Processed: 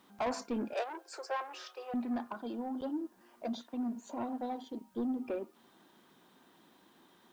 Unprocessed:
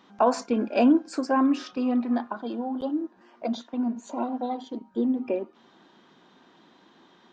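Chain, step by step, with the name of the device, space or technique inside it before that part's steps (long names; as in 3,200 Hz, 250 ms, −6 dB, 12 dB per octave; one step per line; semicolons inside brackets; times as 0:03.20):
open-reel tape (soft clipping −22 dBFS, distortion −10 dB; parametric band 75 Hz +5 dB; white noise bed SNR 37 dB)
0:00.73–0:01.94: Butterworth high-pass 380 Hz 72 dB per octave
level −7 dB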